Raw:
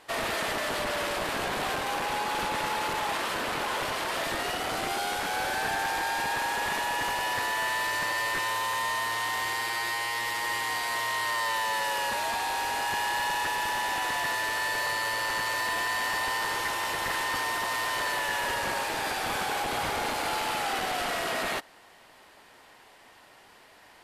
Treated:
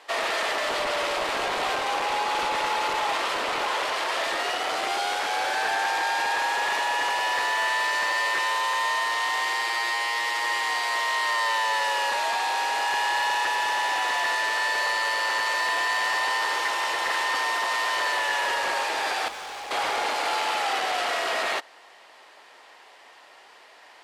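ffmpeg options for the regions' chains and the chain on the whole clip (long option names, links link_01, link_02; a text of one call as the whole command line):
ffmpeg -i in.wav -filter_complex "[0:a]asettb=1/sr,asplit=3[link_01][link_02][link_03];[link_01]atrim=end=0.614[link_04];[link_02]atrim=start=0.61:end=3.71,asetpts=PTS-STARTPTS,afade=type=in:duration=0.004:curve=qsin,afade=type=out:start_time=3.096:duration=0.004:curve=qsin,lowshelf=frequency=140:gain=12,bandreject=frequency=1700:width=19[link_05];[link_03]atrim=start=3.706[link_06];[link_04][link_05]acrossfade=duration=0.004:curve1=hsin:curve2=qsin[link_07];[link_07][link_06]acrossfade=duration=0.004:curve1=qsin:curve2=hsin,asettb=1/sr,asplit=3[link_08][link_09][link_10];[link_08]atrim=end=19.284[link_11];[link_09]atrim=start=19.28:end=19.71,asetpts=PTS-STARTPTS,afade=type=in:duration=0.004:curve=qsin,afade=type=out:start_time=0.426:duration=0.004:curve=qsin,asoftclip=type=hard:threshold=-39dB,aeval=exprs='val(0)+0.00355*(sin(2*PI*50*n/s)+sin(2*PI*2*50*n/s)/2+sin(2*PI*3*50*n/s)/3+sin(2*PI*4*50*n/s)/4+sin(2*PI*5*50*n/s)/5)':channel_layout=same[link_12];[link_10]atrim=start=19.706[link_13];[link_11][link_12]acrossfade=duration=0.004:curve1=hsin:curve2=qsin[link_14];[link_14][link_13]acrossfade=duration=0.004:curve1=qsin:curve2=hsin,acrossover=split=360 7900:gain=0.0891 1 0.224[link_15][link_16][link_17];[link_15][link_16][link_17]amix=inputs=3:normalize=0,bandreject=frequency=1500:width=27,volume=4.5dB" out.wav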